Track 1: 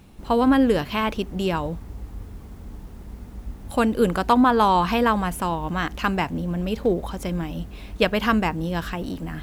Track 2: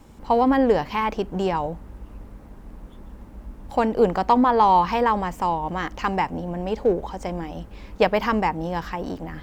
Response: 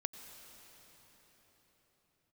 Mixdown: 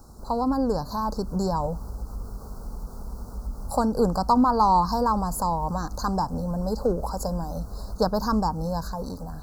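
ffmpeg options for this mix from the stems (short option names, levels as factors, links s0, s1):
-filter_complex "[0:a]highpass=f=390:w=0.5412,highpass=f=390:w=1.3066,acompressor=threshold=0.0562:ratio=6,volume=1.33[s0];[1:a]equalizer=f=540:w=0.55:g=-13.5,volume=1.33,asplit=2[s1][s2];[s2]apad=whole_len=415799[s3];[s0][s3]sidechaincompress=threshold=0.0158:ratio=8:attack=16:release=133[s4];[s4][s1]amix=inputs=2:normalize=0,dynaudnorm=f=260:g=7:m=1.58,asuperstop=centerf=2500:order=12:qfactor=0.87"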